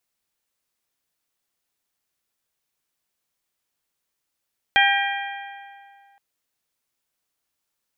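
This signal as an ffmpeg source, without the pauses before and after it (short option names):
-f lavfi -i "aevalsrc='0.133*pow(10,-3*t/2.25)*sin(2*PI*798*t)+0.126*pow(10,-3*t/1.828)*sin(2*PI*1596*t)+0.119*pow(10,-3*t/1.73)*sin(2*PI*1915.2*t)+0.112*pow(10,-3*t/1.618)*sin(2*PI*2394*t)+0.106*pow(10,-3*t/1.484)*sin(2*PI*3192*t)':d=1.42:s=44100"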